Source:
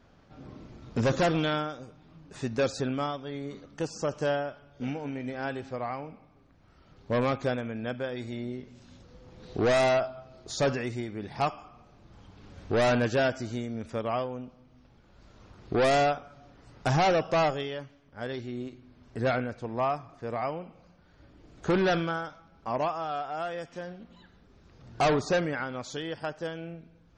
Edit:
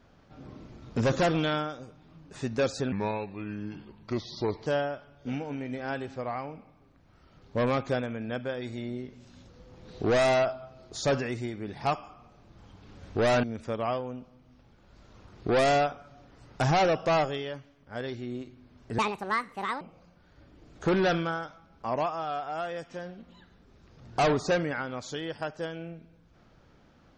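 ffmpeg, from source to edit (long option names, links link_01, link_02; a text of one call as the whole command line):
ffmpeg -i in.wav -filter_complex "[0:a]asplit=6[link_01][link_02][link_03][link_04][link_05][link_06];[link_01]atrim=end=2.924[link_07];[link_02]atrim=start=2.92:end=4.21,asetpts=PTS-STARTPTS,asetrate=32634,aresample=44100,atrim=end_sample=76877,asetpts=PTS-STARTPTS[link_08];[link_03]atrim=start=4.206:end=12.982[link_09];[link_04]atrim=start=13.688:end=19.244[link_10];[link_05]atrim=start=19.24:end=20.63,asetpts=PTS-STARTPTS,asetrate=74088,aresample=44100[link_11];[link_06]atrim=start=20.626[link_12];[link_07][link_08]acrossfade=duration=0.004:curve1=hsin:curve2=hsin[link_13];[link_13][link_09]acrossfade=duration=0.004:curve1=hsin:curve2=hsin[link_14];[link_14][link_10]acrossfade=duration=0.004:curve1=hsin:curve2=hsin[link_15];[link_15][link_11]acrossfade=duration=0.004:curve1=hsin:curve2=hsin[link_16];[link_16][link_12]acrossfade=duration=0.004:curve1=hsin:curve2=hsin" out.wav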